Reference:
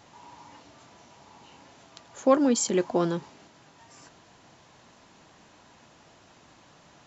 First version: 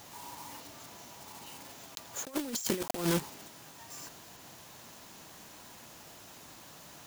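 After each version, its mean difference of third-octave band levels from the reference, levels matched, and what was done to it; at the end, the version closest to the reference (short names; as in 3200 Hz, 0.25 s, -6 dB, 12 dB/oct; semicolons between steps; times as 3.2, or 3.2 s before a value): 14.5 dB: block floating point 3-bit; high shelf 5100 Hz +9.5 dB; negative-ratio compressor -27 dBFS, ratio -0.5; gain -4.5 dB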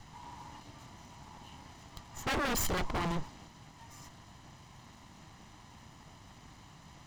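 10.5 dB: minimum comb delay 1 ms; low shelf 160 Hz +12 dB; wavefolder -26.5 dBFS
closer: second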